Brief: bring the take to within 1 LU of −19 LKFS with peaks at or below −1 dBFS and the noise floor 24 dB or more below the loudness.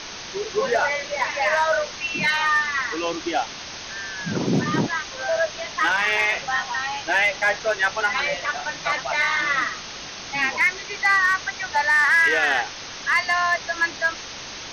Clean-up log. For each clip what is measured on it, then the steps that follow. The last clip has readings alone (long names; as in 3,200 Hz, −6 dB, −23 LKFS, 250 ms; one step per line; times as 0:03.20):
share of clipped samples 0.3%; peaks flattened at −12.0 dBFS; background noise floor −36 dBFS; target noise floor −46 dBFS; integrated loudness −21.5 LKFS; sample peak −12.0 dBFS; target loudness −19.0 LKFS
→ clipped peaks rebuilt −12 dBFS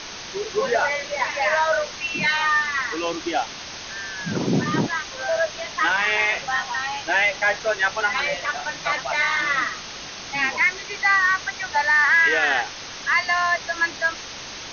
share of clipped samples 0.0%; background noise floor −36 dBFS; target noise floor −46 dBFS
→ noise reduction from a noise print 10 dB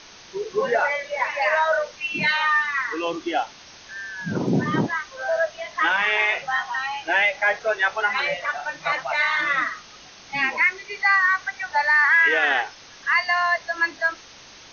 background noise floor −46 dBFS; integrated loudness −21.5 LKFS; sample peak −8.5 dBFS; target loudness −19.0 LKFS
→ level +2.5 dB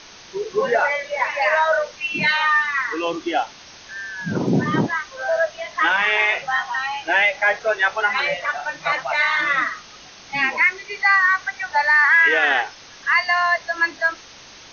integrated loudness −19.0 LKFS; sample peak −6.0 dBFS; background noise floor −43 dBFS